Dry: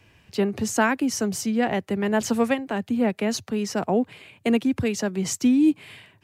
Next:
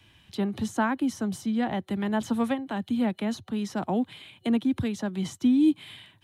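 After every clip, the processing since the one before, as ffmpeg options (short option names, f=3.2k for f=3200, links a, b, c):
-filter_complex "[0:a]superequalizer=7b=0.447:8b=0.631:13b=2.82:16b=1.58,acrossover=split=300|1500[a][b][c];[c]acompressor=threshold=-40dB:ratio=6[d];[a][b][d]amix=inputs=3:normalize=0,volume=-2.5dB"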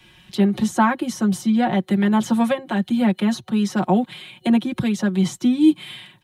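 -af "aecho=1:1:5.5:0.88,volume=6dB"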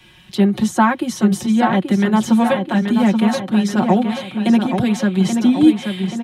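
-filter_complex "[0:a]asplit=2[a][b];[b]adelay=830,lowpass=f=4.8k:p=1,volume=-6dB,asplit=2[c][d];[d]adelay=830,lowpass=f=4.8k:p=1,volume=0.54,asplit=2[e][f];[f]adelay=830,lowpass=f=4.8k:p=1,volume=0.54,asplit=2[g][h];[h]adelay=830,lowpass=f=4.8k:p=1,volume=0.54,asplit=2[i][j];[j]adelay=830,lowpass=f=4.8k:p=1,volume=0.54,asplit=2[k][l];[l]adelay=830,lowpass=f=4.8k:p=1,volume=0.54,asplit=2[m][n];[n]adelay=830,lowpass=f=4.8k:p=1,volume=0.54[o];[a][c][e][g][i][k][m][o]amix=inputs=8:normalize=0,volume=3dB"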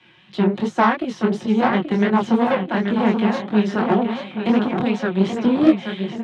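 -af "aeval=exprs='0.891*(cos(1*acos(clip(val(0)/0.891,-1,1)))-cos(1*PI/2))+0.282*(cos(4*acos(clip(val(0)/0.891,-1,1)))-cos(4*PI/2))+0.178*(cos(6*acos(clip(val(0)/0.891,-1,1)))-cos(6*PI/2))+0.126*(cos(8*acos(clip(val(0)/0.891,-1,1)))-cos(8*PI/2))':c=same,flanger=delay=19:depth=8:speed=2.8,highpass=160,lowpass=3.4k"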